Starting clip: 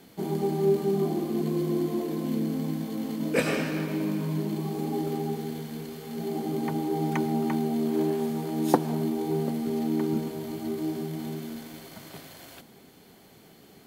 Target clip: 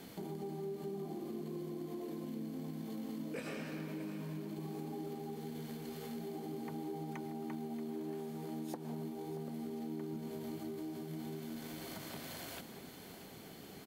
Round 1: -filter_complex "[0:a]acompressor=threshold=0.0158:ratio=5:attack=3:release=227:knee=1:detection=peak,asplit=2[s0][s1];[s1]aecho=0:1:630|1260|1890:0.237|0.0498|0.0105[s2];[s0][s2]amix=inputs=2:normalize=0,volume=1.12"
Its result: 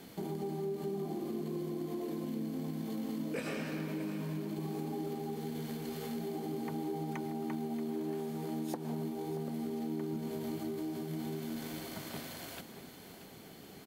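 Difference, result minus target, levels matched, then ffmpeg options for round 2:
compression: peak gain reduction -5 dB
-filter_complex "[0:a]acompressor=threshold=0.00794:ratio=5:attack=3:release=227:knee=1:detection=peak,asplit=2[s0][s1];[s1]aecho=0:1:630|1260|1890:0.237|0.0498|0.0105[s2];[s0][s2]amix=inputs=2:normalize=0,volume=1.12"

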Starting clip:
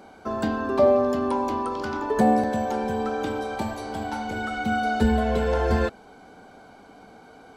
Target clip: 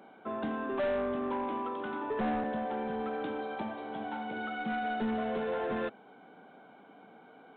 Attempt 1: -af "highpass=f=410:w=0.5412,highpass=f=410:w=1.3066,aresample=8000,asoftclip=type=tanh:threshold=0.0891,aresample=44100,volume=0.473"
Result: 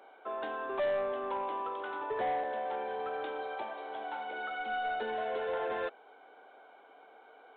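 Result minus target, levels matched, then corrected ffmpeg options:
125 Hz band -12.5 dB
-af "highpass=f=150:w=0.5412,highpass=f=150:w=1.3066,aresample=8000,asoftclip=type=tanh:threshold=0.0891,aresample=44100,volume=0.473"

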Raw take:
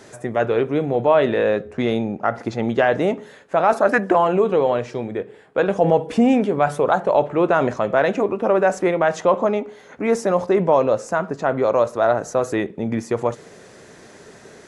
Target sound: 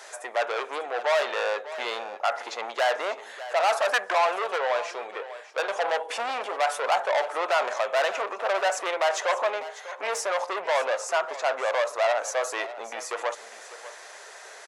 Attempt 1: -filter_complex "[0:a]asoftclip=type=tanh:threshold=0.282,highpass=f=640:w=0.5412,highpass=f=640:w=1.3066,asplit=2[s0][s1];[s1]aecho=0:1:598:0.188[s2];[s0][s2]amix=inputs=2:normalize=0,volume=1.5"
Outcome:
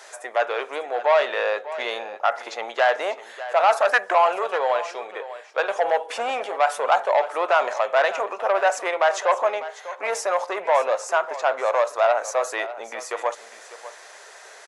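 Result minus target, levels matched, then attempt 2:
saturation: distortion -8 dB
-filter_complex "[0:a]asoftclip=type=tanh:threshold=0.1,highpass=f=640:w=0.5412,highpass=f=640:w=1.3066,asplit=2[s0][s1];[s1]aecho=0:1:598:0.188[s2];[s0][s2]amix=inputs=2:normalize=0,volume=1.5"

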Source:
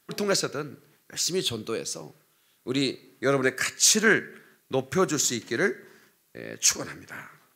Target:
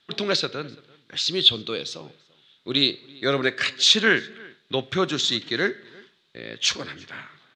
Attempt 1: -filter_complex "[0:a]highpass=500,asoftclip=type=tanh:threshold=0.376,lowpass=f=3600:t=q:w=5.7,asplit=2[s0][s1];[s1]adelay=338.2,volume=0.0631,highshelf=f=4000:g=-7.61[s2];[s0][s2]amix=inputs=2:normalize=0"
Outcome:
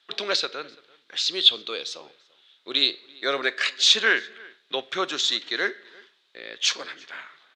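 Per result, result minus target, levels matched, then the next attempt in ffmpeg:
saturation: distortion +11 dB; 500 Hz band -3.5 dB
-filter_complex "[0:a]highpass=500,asoftclip=type=tanh:threshold=0.794,lowpass=f=3600:t=q:w=5.7,asplit=2[s0][s1];[s1]adelay=338.2,volume=0.0631,highshelf=f=4000:g=-7.61[s2];[s0][s2]amix=inputs=2:normalize=0"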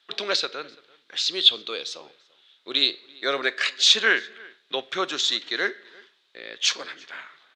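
500 Hz band -4.0 dB
-filter_complex "[0:a]asoftclip=type=tanh:threshold=0.794,lowpass=f=3600:t=q:w=5.7,asplit=2[s0][s1];[s1]adelay=338.2,volume=0.0631,highshelf=f=4000:g=-7.61[s2];[s0][s2]amix=inputs=2:normalize=0"

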